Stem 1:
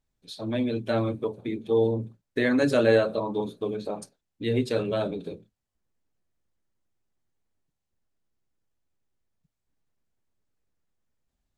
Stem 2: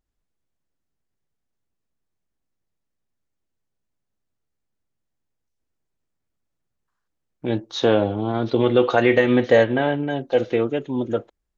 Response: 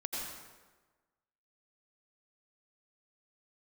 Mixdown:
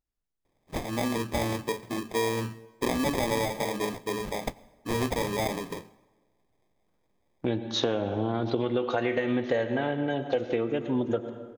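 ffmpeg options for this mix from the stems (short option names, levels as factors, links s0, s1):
-filter_complex "[0:a]crystalizer=i=6.5:c=0,acrusher=samples=31:mix=1:aa=0.000001,adelay=450,volume=0.75,asplit=2[s0][s1];[s1]volume=0.075[s2];[1:a]agate=range=0.355:threshold=0.0112:ratio=16:detection=peak,volume=0.891,asplit=2[s3][s4];[s4]volume=0.251[s5];[2:a]atrim=start_sample=2205[s6];[s2][s5]amix=inputs=2:normalize=0[s7];[s7][s6]afir=irnorm=-1:irlink=0[s8];[s0][s3][s8]amix=inputs=3:normalize=0,acompressor=threshold=0.0708:ratio=12"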